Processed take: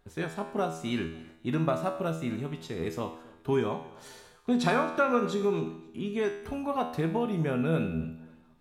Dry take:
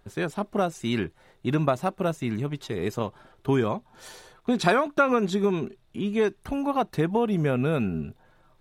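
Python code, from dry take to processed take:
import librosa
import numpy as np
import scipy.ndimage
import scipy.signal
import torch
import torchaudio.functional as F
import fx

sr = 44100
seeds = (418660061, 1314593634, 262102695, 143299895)

y = fx.comb_fb(x, sr, f0_hz=81.0, decay_s=0.7, harmonics='all', damping=0.0, mix_pct=80)
y = fx.echo_feedback(y, sr, ms=268, feedback_pct=34, wet_db=-22.0)
y = y * librosa.db_to_amplitude(5.0)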